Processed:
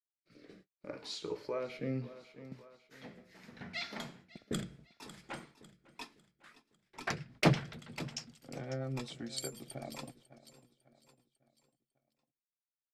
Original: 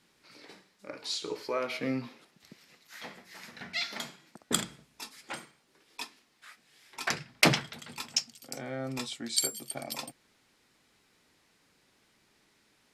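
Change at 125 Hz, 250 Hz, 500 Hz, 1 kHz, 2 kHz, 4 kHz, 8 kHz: +2.0, −2.5, −3.0, −5.5, −8.0, −10.5, −13.5 decibels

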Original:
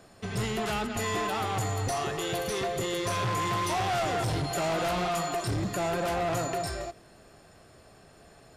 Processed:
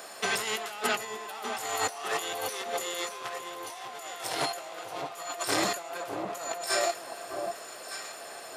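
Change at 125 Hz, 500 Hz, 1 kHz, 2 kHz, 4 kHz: −20.0, −3.5, −3.5, +1.0, +1.5 decibels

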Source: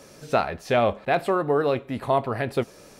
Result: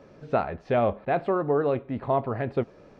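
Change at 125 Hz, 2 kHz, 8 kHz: −0.5 dB, −6.5 dB, can't be measured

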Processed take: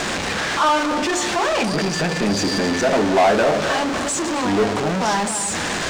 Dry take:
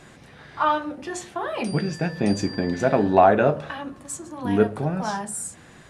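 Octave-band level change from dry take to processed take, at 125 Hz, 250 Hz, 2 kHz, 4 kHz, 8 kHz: +0.5, +3.5, +10.0, +15.0, +10.5 decibels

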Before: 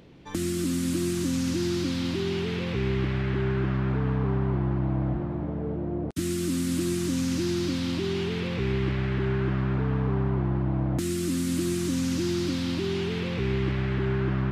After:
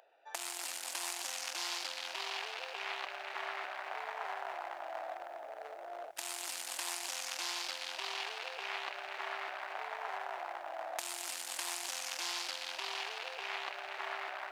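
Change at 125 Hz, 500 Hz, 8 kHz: below −40 dB, −16.0 dB, −2.5 dB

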